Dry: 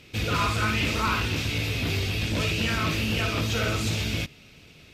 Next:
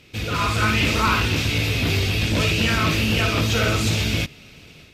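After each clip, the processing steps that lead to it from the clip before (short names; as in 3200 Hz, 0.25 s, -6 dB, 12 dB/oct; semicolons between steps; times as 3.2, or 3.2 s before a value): AGC gain up to 6 dB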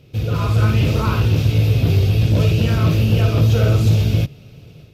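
graphic EQ 125/250/500/1000/2000/4000/8000 Hz +11/-4/+4/-4/-11/-4/-10 dB; gain +1.5 dB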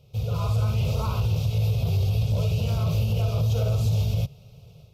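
limiter -9.5 dBFS, peak gain reduction 5 dB; fixed phaser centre 720 Hz, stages 4; gain -4.5 dB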